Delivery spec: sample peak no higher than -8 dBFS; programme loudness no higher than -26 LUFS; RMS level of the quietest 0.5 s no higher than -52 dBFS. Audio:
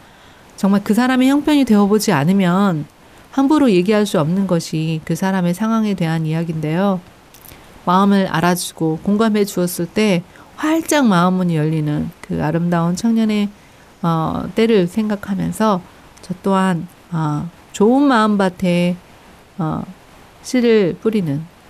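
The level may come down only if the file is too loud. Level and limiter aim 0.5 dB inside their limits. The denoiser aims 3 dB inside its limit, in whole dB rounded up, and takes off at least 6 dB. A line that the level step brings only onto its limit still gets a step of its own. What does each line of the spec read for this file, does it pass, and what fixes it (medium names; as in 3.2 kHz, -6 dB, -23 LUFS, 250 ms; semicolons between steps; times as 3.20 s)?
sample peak -4.5 dBFS: fail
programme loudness -16.5 LUFS: fail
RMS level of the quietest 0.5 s -45 dBFS: fail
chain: trim -10 dB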